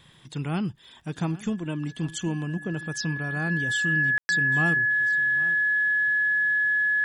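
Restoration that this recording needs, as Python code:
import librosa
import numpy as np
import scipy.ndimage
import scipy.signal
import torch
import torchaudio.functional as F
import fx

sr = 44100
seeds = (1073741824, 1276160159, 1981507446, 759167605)

y = fx.fix_declick_ar(x, sr, threshold=6.5)
y = fx.notch(y, sr, hz=1700.0, q=30.0)
y = fx.fix_ambience(y, sr, seeds[0], print_start_s=0.71, print_end_s=1.21, start_s=4.18, end_s=4.29)
y = fx.fix_echo_inverse(y, sr, delay_ms=806, level_db=-18.5)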